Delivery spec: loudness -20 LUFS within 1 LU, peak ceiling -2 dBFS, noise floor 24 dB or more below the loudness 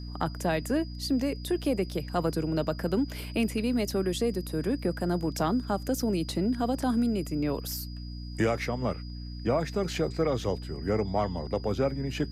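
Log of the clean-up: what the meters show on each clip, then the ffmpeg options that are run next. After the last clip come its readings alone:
hum 60 Hz; highest harmonic 300 Hz; hum level -36 dBFS; steady tone 4.9 kHz; tone level -49 dBFS; loudness -29.5 LUFS; peak level -14.5 dBFS; loudness target -20.0 LUFS
-> -af "bandreject=f=60:t=h:w=6,bandreject=f=120:t=h:w=6,bandreject=f=180:t=h:w=6,bandreject=f=240:t=h:w=6,bandreject=f=300:t=h:w=6"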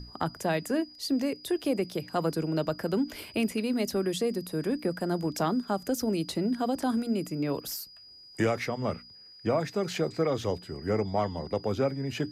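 hum not found; steady tone 4.9 kHz; tone level -49 dBFS
-> -af "bandreject=f=4900:w=30"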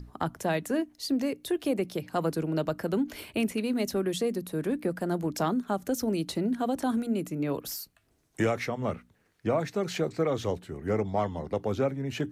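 steady tone not found; loudness -30.5 LUFS; peak level -15.0 dBFS; loudness target -20.0 LUFS
-> -af "volume=3.35"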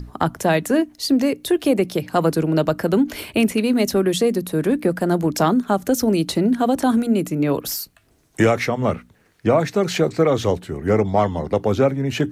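loudness -20.0 LUFS; peak level -4.5 dBFS; noise floor -58 dBFS

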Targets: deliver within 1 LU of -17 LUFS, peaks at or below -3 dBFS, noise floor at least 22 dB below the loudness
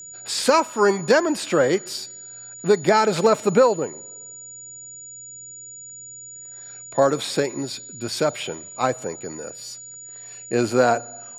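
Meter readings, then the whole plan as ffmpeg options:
steady tone 6.9 kHz; tone level -37 dBFS; loudness -21.5 LUFS; peak level -4.0 dBFS; loudness target -17.0 LUFS
-> -af "bandreject=f=6900:w=30"
-af "volume=1.68,alimiter=limit=0.708:level=0:latency=1"

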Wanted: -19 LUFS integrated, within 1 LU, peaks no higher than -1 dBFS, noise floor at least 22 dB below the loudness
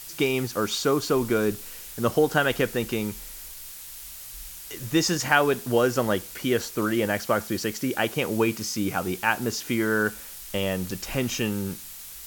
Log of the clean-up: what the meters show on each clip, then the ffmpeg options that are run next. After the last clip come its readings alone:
noise floor -41 dBFS; noise floor target -48 dBFS; loudness -25.5 LUFS; peak level -4.5 dBFS; loudness target -19.0 LUFS
-> -af "afftdn=nr=7:nf=-41"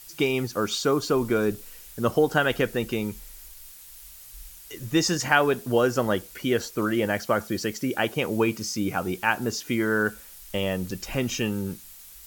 noise floor -46 dBFS; noise floor target -48 dBFS
-> -af "afftdn=nr=6:nf=-46"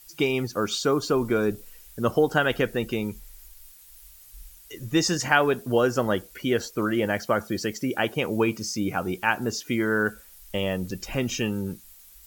noise floor -51 dBFS; loudness -25.5 LUFS; peak level -4.5 dBFS; loudness target -19.0 LUFS
-> -af "volume=2.11,alimiter=limit=0.891:level=0:latency=1"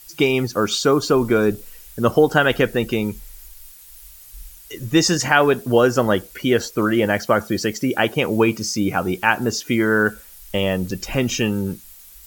loudness -19.5 LUFS; peak level -1.0 dBFS; noise floor -44 dBFS

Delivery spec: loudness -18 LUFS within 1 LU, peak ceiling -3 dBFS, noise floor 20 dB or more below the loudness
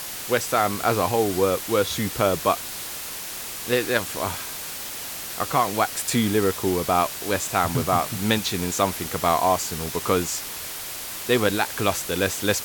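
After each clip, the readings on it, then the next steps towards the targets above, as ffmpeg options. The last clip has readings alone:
noise floor -34 dBFS; noise floor target -44 dBFS; loudness -23.5 LUFS; peak level -5.5 dBFS; loudness target -18.0 LUFS
-> -af "afftdn=nr=10:nf=-34"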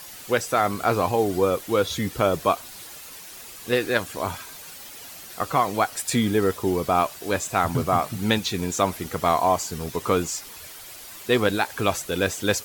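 noise floor -42 dBFS; noise floor target -44 dBFS
-> -af "afftdn=nr=6:nf=-42"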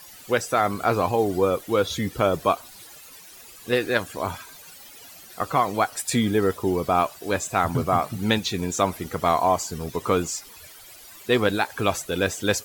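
noise floor -46 dBFS; loudness -24.0 LUFS; peak level -6.0 dBFS; loudness target -18.0 LUFS
-> -af "volume=2,alimiter=limit=0.708:level=0:latency=1"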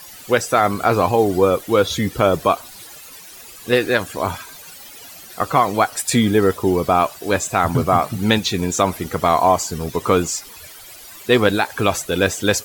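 loudness -18.5 LUFS; peak level -3.0 dBFS; noise floor -40 dBFS

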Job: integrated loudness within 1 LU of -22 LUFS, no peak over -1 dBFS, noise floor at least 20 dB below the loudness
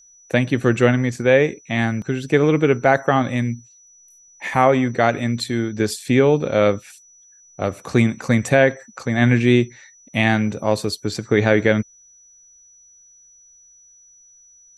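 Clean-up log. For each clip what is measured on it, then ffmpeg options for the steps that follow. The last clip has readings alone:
steady tone 5.9 kHz; tone level -48 dBFS; loudness -19.0 LUFS; peak level -1.5 dBFS; loudness target -22.0 LUFS
-> -af "bandreject=f=5900:w=30"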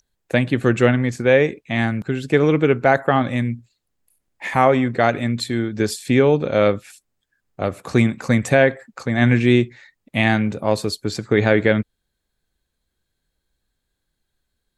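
steady tone not found; loudness -19.0 LUFS; peak level -1.5 dBFS; loudness target -22.0 LUFS
-> -af "volume=0.708"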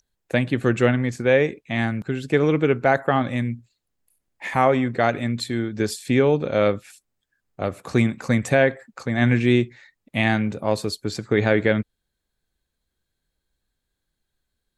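loudness -22.0 LUFS; peak level -4.5 dBFS; noise floor -80 dBFS

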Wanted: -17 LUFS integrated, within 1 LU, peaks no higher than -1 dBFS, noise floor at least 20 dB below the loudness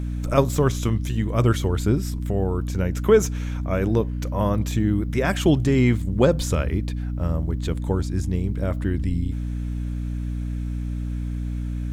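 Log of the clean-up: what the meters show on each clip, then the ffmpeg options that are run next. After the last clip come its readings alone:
hum 60 Hz; highest harmonic 300 Hz; hum level -25 dBFS; loudness -23.5 LUFS; peak level -3.5 dBFS; loudness target -17.0 LUFS
-> -af "bandreject=f=60:t=h:w=4,bandreject=f=120:t=h:w=4,bandreject=f=180:t=h:w=4,bandreject=f=240:t=h:w=4,bandreject=f=300:t=h:w=4"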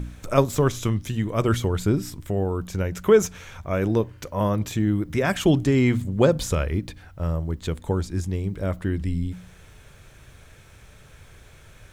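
hum not found; loudness -24.0 LUFS; peak level -4.0 dBFS; loudness target -17.0 LUFS
-> -af "volume=2.24,alimiter=limit=0.891:level=0:latency=1"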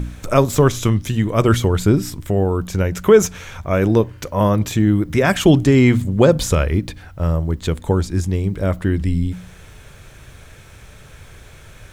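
loudness -17.5 LUFS; peak level -1.0 dBFS; noise floor -43 dBFS

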